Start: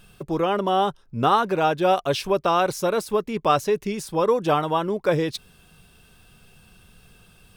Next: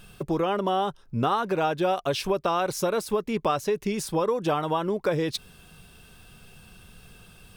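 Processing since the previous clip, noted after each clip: compression 4:1, threshold -25 dBFS, peak gain reduction 10 dB; trim +2.5 dB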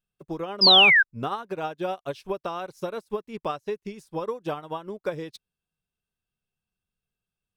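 painted sound fall, 0.61–1.03 s, 1.5–5.2 kHz -18 dBFS; upward expansion 2.5:1, over -45 dBFS; trim +3.5 dB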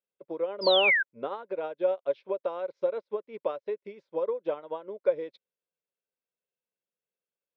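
cabinet simulation 450–2900 Hz, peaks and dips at 540 Hz +10 dB, 760 Hz -9 dB, 1.2 kHz -9 dB, 1.7 kHz -8 dB, 2.8 kHz -10 dB

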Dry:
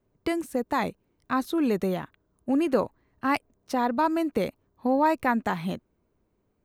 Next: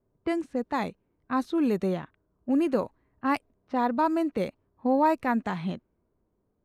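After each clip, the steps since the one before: level-controlled noise filter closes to 1.3 kHz, open at -20 dBFS; harmonic-percussive split percussive -5 dB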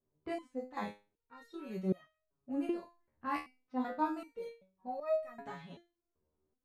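chorus 0.41 Hz, delay 20 ms, depth 4.5 ms; resonator arpeggio 2.6 Hz 76–630 Hz; trim +2 dB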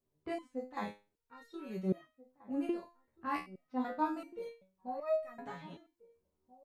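echo from a far wall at 280 m, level -19 dB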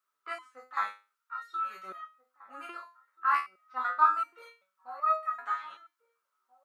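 resonant high-pass 1.3 kHz, resonance Q 15; trim +3.5 dB

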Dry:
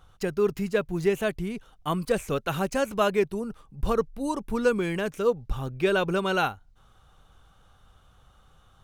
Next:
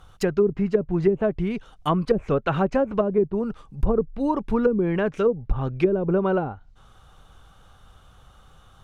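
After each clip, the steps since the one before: low-pass that closes with the level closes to 370 Hz, closed at -19.5 dBFS; trim +6 dB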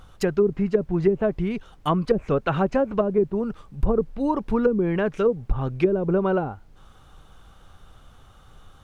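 added noise brown -52 dBFS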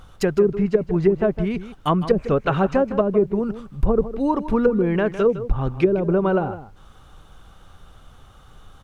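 echo from a far wall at 27 m, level -13 dB; trim +2.5 dB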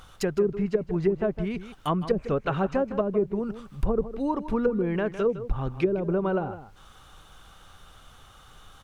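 tape noise reduction on one side only encoder only; trim -6.5 dB

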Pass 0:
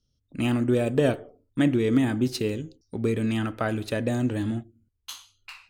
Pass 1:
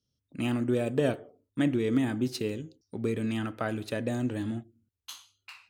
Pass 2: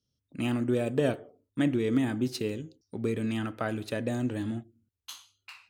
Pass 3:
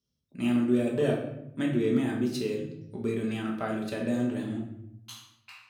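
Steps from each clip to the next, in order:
high-pass 91 Hz; trim -4.5 dB
no audible change
simulated room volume 210 m³, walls mixed, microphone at 1.2 m; trim -4 dB

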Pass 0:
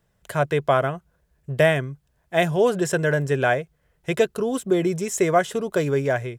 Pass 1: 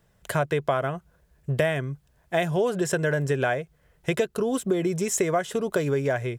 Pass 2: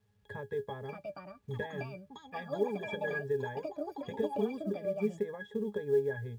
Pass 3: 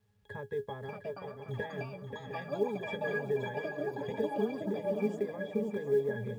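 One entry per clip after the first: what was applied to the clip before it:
compression 4:1, threshold -26 dBFS, peak gain reduction 11.5 dB; trim +4 dB
pitch-class resonator G#, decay 0.13 s; companded quantiser 8-bit; ever faster or slower copies 680 ms, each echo +6 st, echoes 2, each echo -6 dB
shuffle delay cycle 709 ms, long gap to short 3:1, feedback 36%, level -7 dB

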